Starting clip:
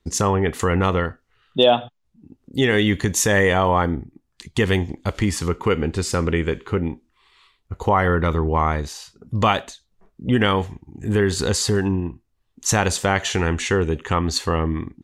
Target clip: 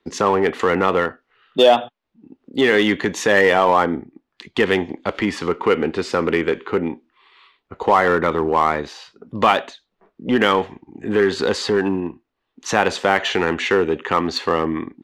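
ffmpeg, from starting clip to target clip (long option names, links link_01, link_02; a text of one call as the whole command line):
ffmpeg -i in.wav -filter_complex "[0:a]acrossover=split=220 4100:gain=0.0794 1 0.0708[link_01][link_02][link_03];[link_01][link_02][link_03]amix=inputs=3:normalize=0,asplit=2[link_04][link_05];[link_05]asoftclip=type=hard:threshold=-21dB,volume=-3.5dB[link_06];[link_04][link_06]amix=inputs=2:normalize=0,volume=1.5dB" out.wav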